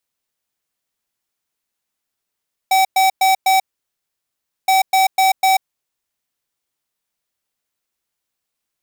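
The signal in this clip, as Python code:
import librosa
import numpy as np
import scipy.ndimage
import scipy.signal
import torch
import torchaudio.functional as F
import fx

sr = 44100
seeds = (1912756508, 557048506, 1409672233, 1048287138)

y = fx.beep_pattern(sr, wave='square', hz=764.0, on_s=0.14, off_s=0.11, beeps=4, pause_s=1.08, groups=2, level_db=-13.0)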